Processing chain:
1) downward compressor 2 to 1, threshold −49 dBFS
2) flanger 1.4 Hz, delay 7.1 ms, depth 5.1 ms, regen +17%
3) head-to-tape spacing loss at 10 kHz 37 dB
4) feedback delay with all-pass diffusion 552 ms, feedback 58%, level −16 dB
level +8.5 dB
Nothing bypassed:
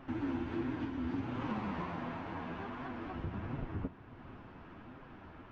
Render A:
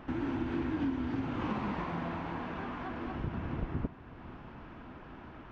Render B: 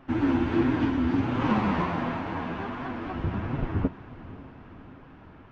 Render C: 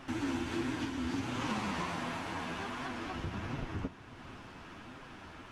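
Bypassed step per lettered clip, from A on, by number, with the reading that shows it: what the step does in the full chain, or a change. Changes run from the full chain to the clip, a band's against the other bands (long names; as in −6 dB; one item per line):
2, change in integrated loudness +3.5 LU
1, average gain reduction 8.0 dB
3, 4 kHz band +10.5 dB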